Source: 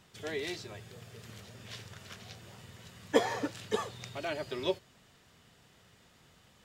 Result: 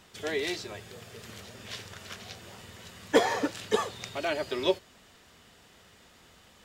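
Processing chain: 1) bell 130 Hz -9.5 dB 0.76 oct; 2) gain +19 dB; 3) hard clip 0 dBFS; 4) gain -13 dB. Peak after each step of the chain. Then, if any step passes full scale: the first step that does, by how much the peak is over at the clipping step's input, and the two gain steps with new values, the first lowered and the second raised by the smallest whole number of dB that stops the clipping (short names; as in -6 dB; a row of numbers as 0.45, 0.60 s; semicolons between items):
-11.0, +8.0, 0.0, -13.0 dBFS; step 2, 8.0 dB; step 2 +11 dB, step 4 -5 dB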